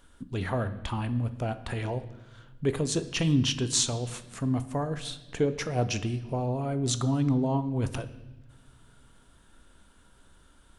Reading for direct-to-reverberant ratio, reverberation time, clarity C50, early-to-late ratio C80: 10.5 dB, 1.1 s, 14.0 dB, 16.0 dB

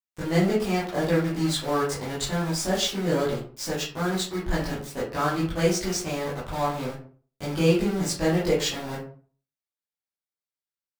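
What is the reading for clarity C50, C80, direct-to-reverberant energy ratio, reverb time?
4.5 dB, 10.0 dB, −10.0 dB, 0.45 s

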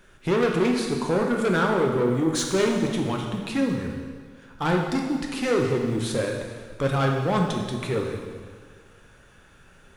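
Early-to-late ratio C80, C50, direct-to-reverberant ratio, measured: 4.5 dB, 3.0 dB, 0.5 dB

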